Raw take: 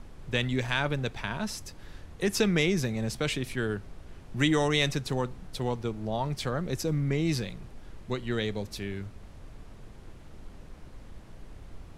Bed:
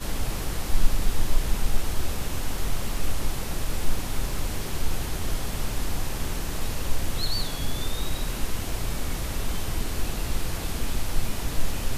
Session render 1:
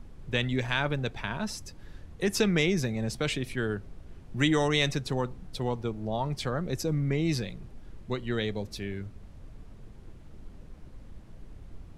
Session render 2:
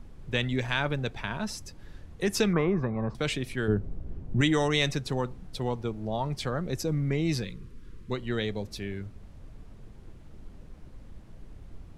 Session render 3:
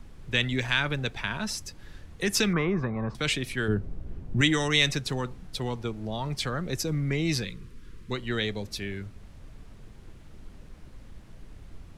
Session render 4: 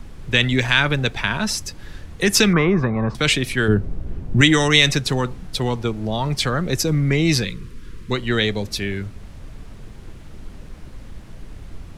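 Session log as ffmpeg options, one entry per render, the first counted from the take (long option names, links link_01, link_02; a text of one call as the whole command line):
ffmpeg -i in.wav -af "afftdn=noise_reduction=6:noise_floor=-48" out.wav
ffmpeg -i in.wav -filter_complex "[0:a]asettb=1/sr,asplit=3[link_01][link_02][link_03];[link_01]atrim=end=2.534[link_04];[link_02]atrim=start=2.53:end=3.15,asetpts=PTS-STARTPTS,afade=type=in:duration=0.004:curve=qsin,afade=type=out:start_time=0.616:duration=0.004:curve=qsin,lowpass=frequency=1100:width_type=q:width=8.6[link_05];[link_03]atrim=start=3.146[link_06];[link_04][link_05]acrossfade=duration=0.004:curve1=hsin:curve2=qsin[link_07];[link_07][link_06]acrossfade=duration=0.004:curve1=qsin:curve2=hsin,asettb=1/sr,asplit=3[link_08][link_09][link_10];[link_08]atrim=end=3.684[link_11];[link_09]atrim=start=3.68:end=4.41,asetpts=PTS-STARTPTS,afade=type=in:duration=0.004:curve=qsin,afade=type=out:start_time=0.726:duration=0.004:curve=qsin,tiltshelf=frequency=970:gain=9[link_12];[link_10]atrim=start=4.406[link_13];[link_11][link_12]acrossfade=duration=0.004:curve1=hsin:curve2=qsin[link_14];[link_14][link_13]acrossfade=duration=0.004:curve1=qsin:curve2=hsin,asettb=1/sr,asplit=3[link_15][link_16][link_17];[link_15]atrim=end=7.444[link_18];[link_16]atrim=start=7.44:end=8.11,asetpts=PTS-STARTPTS,afade=type=in:duration=0.004:curve=qsin,afade=type=out:start_time=0.666:duration=0.004:curve=qsin,asuperstop=centerf=710:order=8:qfactor=1.6[link_19];[link_17]atrim=start=8.106[link_20];[link_18][link_19]acrossfade=duration=0.004:curve1=hsin:curve2=qsin[link_21];[link_21][link_20]acrossfade=duration=0.004:curve1=qsin:curve2=hsin" out.wav
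ffmpeg -i in.wav -filter_complex "[0:a]acrossover=split=430|1200[link_01][link_02][link_03];[link_02]alimiter=level_in=10dB:limit=-24dB:level=0:latency=1,volume=-10dB[link_04];[link_03]acontrast=35[link_05];[link_01][link_04][link_05]amix=inputs=3:normalize=0" out.wav
ffmpeg -i in.wav -af "volume=9.5dB,alimiter=limit=-1dB:level=0:latency=1" out.wav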